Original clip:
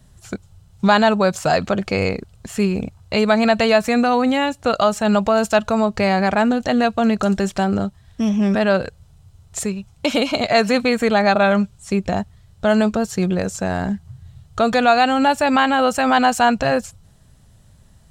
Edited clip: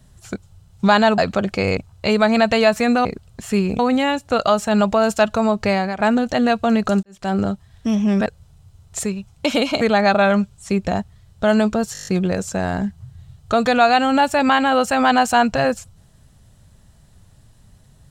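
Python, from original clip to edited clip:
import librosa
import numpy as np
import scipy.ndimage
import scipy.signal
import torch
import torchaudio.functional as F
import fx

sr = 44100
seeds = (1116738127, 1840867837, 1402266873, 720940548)

y = fx.edit(x, sr, fx.cut(start_s=1.18, length_s=0.34),
    fx.move(start_s=2.11, length_s=0.74, to_s=4.13),
    fx.fade_out_to(start_s=6.03, length_s=0.31, floor_db=-13.0),
    fx.fade_in_span(start_s=7.37, length_s=0.31, curve='qua'),
    fx.cut(start_s=8.6, length_s=0.26),
    fx.cut(start_s=10.41, length_s=0.61),
    fx.stutter(start_s=13.14, slice_s=0.02, count=8), tone=tone)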